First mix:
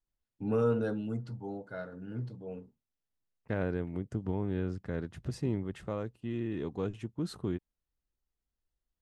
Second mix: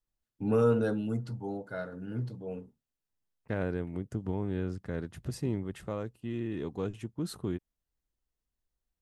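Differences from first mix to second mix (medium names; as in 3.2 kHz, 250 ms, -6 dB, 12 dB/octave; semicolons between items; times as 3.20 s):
first voice +3.0 dB; master: remove distance through air 50 m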